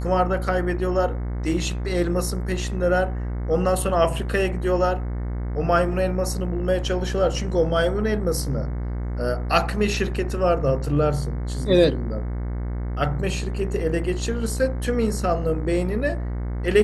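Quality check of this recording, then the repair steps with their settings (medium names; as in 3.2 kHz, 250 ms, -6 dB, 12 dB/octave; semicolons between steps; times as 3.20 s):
buzz 60 Hz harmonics 37 -27 dBFS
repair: de-hum 60 Hz, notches 37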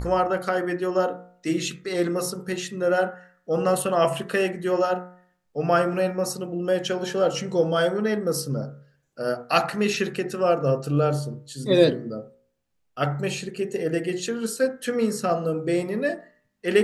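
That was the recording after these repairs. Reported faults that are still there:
nothing left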